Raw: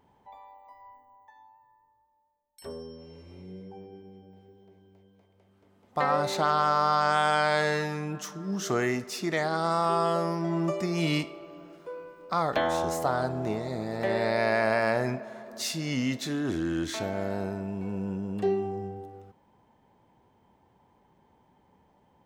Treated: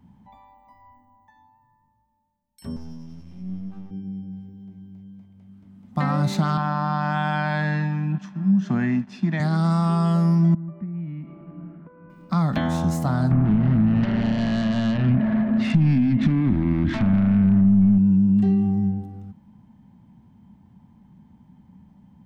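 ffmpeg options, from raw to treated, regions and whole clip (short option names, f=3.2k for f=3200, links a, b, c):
-filter_complex "[0:a]asettb=1/sr,asplit=3[a][b][c];[a]atrim=end=2.764[d];[b]atrim=start=2.76:end=3.91,asetpts=PTS-STARTPTS,afade=t=in:d=0.004:c=qsin,afade=t=out:st=1.146:d=0.004:c=qsin,lowshelf=f=64:g=-11,aeval=exprs='max(val(0),0)':c=same[e];[c]atrim=start=3.906[f];[d][e]acrossfade=d=0.004:c1=hsin:c2=qsin[g];[g][f]acrossfade=d=0.004:c1=qsin:c2=hsin,asettb=1/sr,asplit=3[h][i][j];[h]atrim=end=6.574[k];[i]atrim=start=6.57:end=9.4,asetpts=PTS-STARTPTS,afade=t=in:d=0.004:c=qsin,afade=t=out:st=2.826:d=0.004:c=qsin,aeval=exprs='sgn(val(0))*max(abs(val(0))-0.00562,0)':c=same,highpass=180,lowpass=2.8k,aecho=1:1:1.2:0.45,atrim=end_sample=124803[l];[j]atrim=start=9.396[m];[k][l]acrossfade=d=0.004:c1=hsin:c2=qsin[n];[n][m]acrossfade=d=0.004:c1=qsin:c2=hsin,asettb=1/sr,asplit=3[o][p][q];[o]atrim=end=10.544[r];[p]atrim=start=10.54:end=12.1,asetpts=PTS-STARTPTS,afade=t=in:d=0.004:c=qsin,afade=t=out:st=1.556:d=0.004:c=qsin,lowpass=f=1.9k:w=0.5412,lowpass=f=1.9k:w=1.3066,acompressor=threshold=-42dB:ratio=12:attack=3.2:release=140:knee=1:detection=peak[s];[q]atrim=start=12.096[t];[r][s]acrossfade=d=0.004:c1=hsin:c2=qsin[u];[u][t]acrossfade=d=0.004:c1=qsin:c2=hsin,asettb=1/sr,asplit=3[v][w][x];[v]atrim=end=13.314[y];[w]atrim=start=13.31:end=17.98,asetpts=PTS-STARTPTS,afade=t=in:d=0.004:c=qsin,afade=t=out:st=4.666:d=0.004:c=qsin,lowpass=f=2.4k:w=0.5412,lowpass=f=2.4k:w=1.3066,acompressor=threshold=-36dB:ratio=6:attack=3.2:release=140:knee=1:detection=peak,aeval=exprs='0.0531*sin(PI/2*3.55*val(0)/0.0531)':c=same[z];[x]atrim=start=17.976[aa];[y][z]acrossfade=d=0.004:c1=hsin:c2=qsin[ab];[ab][aa]acrossfade=d=0.004:c1=qsin:c2=hsin,lowshelf=f=300:t=q:w=3:g=12.5,acrossover=split=140[ac][ad];[ad]acompressor=threshold=-18dB:ratio=6[ae];[ac][ae]amix=inputs=2:normalize=0"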